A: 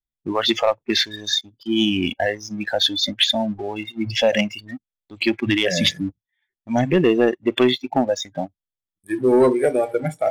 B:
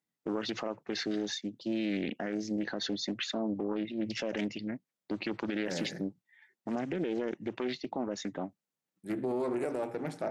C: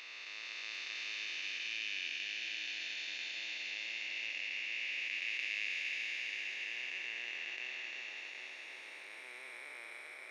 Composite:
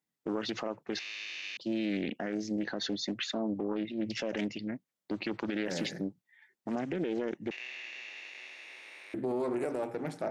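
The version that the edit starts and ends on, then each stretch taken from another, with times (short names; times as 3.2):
B
0.99–1.57 from C
7.51–9.14 from C
not used: A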